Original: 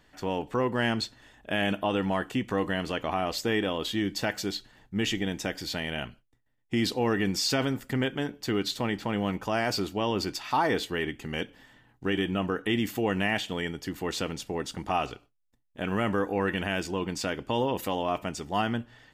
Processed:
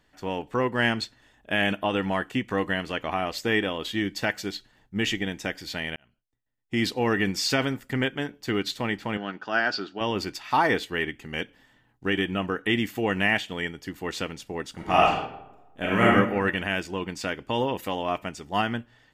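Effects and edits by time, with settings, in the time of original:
0:05.96–0:06.87: fade in
0:09.17–0:10.01: loudspeaker in its box 250–5,000 Hz, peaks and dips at 510 Hz −6 dB, 1,000 Hz −5 dB, 1,500 Hz +9 dB, 2,200 Hz −10 dB, 4,700 Hz +3 dB
0:14.73–0:16.11: thrown reverb, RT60 1.1 s, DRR −3.5 dB
whole clip: dynamic equaliser 2,000 Hz, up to +5 dB, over −46 dBFS, Q 1.3; expander for the loud parts 1.5 to 1, over −36 dBFS; level +4 dB

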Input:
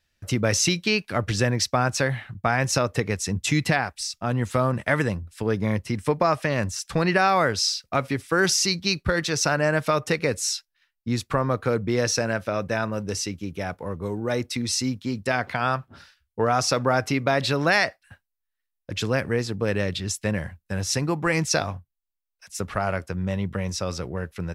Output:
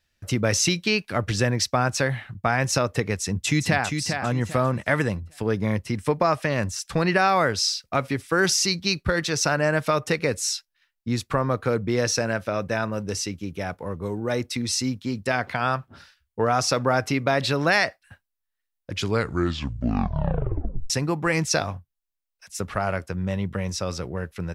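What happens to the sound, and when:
0:03.20–0:03.86: delay throw 400 ms, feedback 30%, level −6 dB
0:18.90: tape stop 2.00 s

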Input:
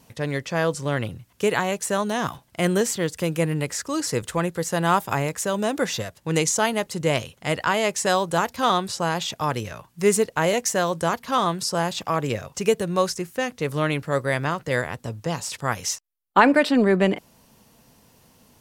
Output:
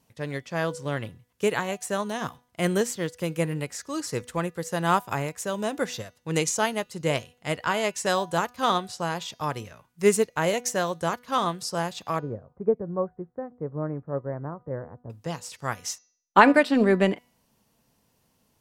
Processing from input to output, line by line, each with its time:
0:12.19–0:15.10: Gaussian smoothing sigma 8.3 samples
whole clip: hum removal 245.4 Hz, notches 27; expander for the loud parts 1.5 to 1, over −38 dBFS; level +1 dB

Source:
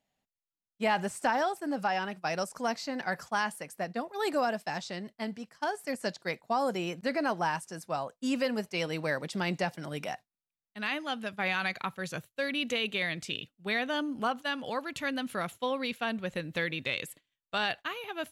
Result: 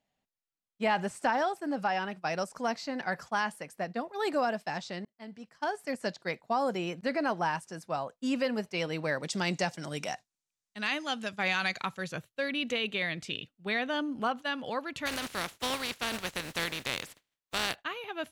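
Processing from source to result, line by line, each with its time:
0:05.05–0:05.67: fade in
0:09.23–0:12.04: parametric band 7,000 Hz +13 dB 1.3 octaves
0:15.05–0:17.74: compressing power law on the bin magnitudes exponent 0.34
whole clip: high-shelf EQ 9,600 Hz −11.5 dB

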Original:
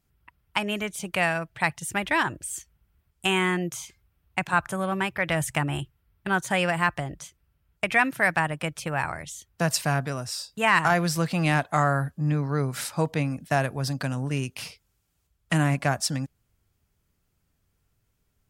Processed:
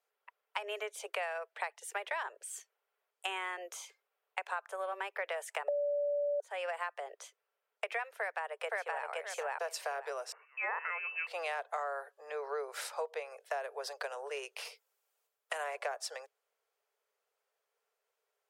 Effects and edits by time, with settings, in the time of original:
0:05.68–0:06.40: beep over 579 Hz −8.5 dBFS
0:08.17–0:09.06: delay throw 520 ms, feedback 15%, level −0.5 dB
0:10.32–0:11.27: voice inversion scrambler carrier 2,800 Hz
0:14.65–0:15.64: high-shelf EQ 11,000 Hz +12 dB
whole clip: Butterworth high-pass 420 Hz 96 dB per octave; spectral tilt −2.5 dB per octave; downward compressor 6 to 1, threshold −32 dBFS; level −2.5 dB

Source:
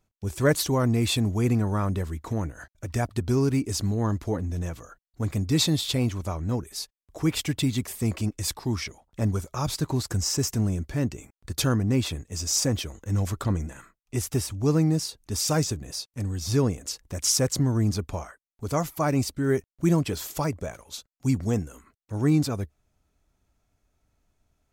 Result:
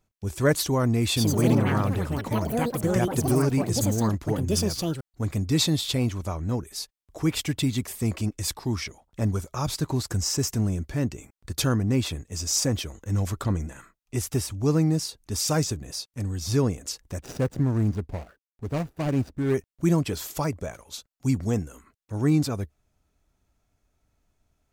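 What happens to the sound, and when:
0:01.06–0:06.19: delay with pitch and tempo change per echo 105 ms, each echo +5 semitones, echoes 3
0:17.19–0:19.54: running median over 41 samples

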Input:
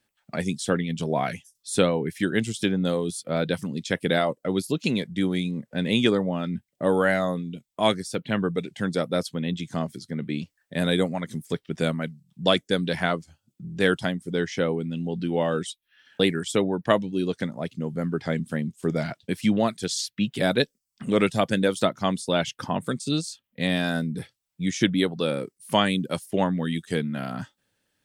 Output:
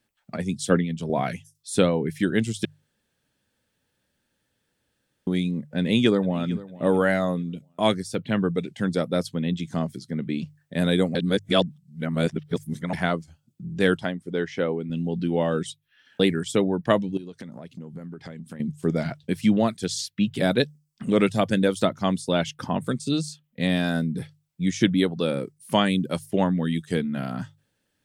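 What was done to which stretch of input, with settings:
0:00.37–0:01.10: multiband upward and downward expander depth 100%
0:02.65–0:05.27: fill with room tone
0:05.77–0:06.67: delay throw 450 ms, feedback 30%, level −18 dB
0:11.15–0:12.93: reverse
0:13.97–0:14.90: bass and treble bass −7 dB, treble −9 dB
0:17.17–0:18.60: downward compressor 10 to 1, threshold −36 dBFS
whole clip: low-shelf EQ 400 Hz +5 dB; mains-hum notches 50/100/150 Hz; level −1.5 dB

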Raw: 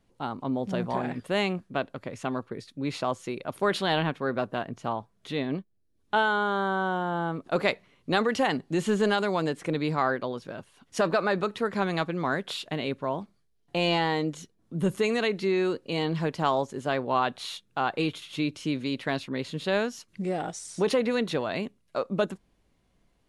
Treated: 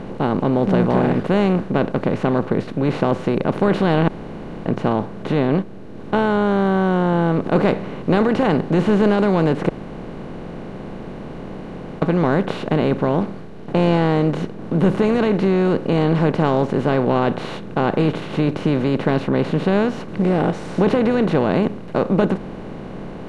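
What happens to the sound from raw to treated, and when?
0:04.08–0:04.66: fill with room tone
0:09.69–0:12.02: fill with room tone
whole clip: compressor on every frequency bin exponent 0.4; spectral tilt −4 dB per octave; level −1.5 dB

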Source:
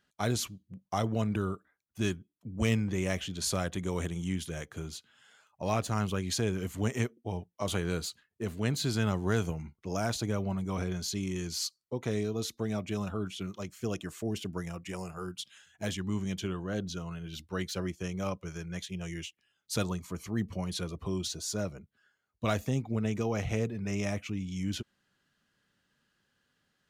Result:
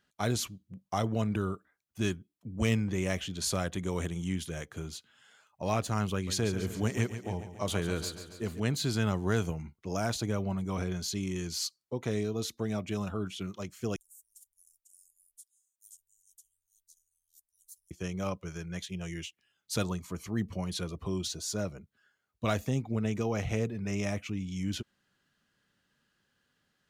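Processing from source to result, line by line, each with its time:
0:06.13–0:08.60: repeating echo 140 ms, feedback 59%, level −11.5 dB
0:13.96–0:17.91: inverse Chebyshev band-stop filter 120–1,800 Hz, stop band 80 dB

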